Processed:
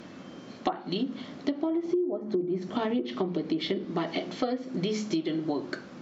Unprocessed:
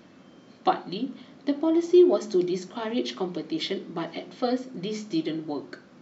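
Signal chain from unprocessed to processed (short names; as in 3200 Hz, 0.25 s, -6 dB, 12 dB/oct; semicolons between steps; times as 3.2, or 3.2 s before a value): 1.85–3.85 low shelf 460 Hz +7 dB; treble ducked by the level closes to 930 Hz, closed at -15.5 dBFS; compressor 16:1, threshold -32 dBFS, peak gain reduction 24.5 dB; gain +7 dB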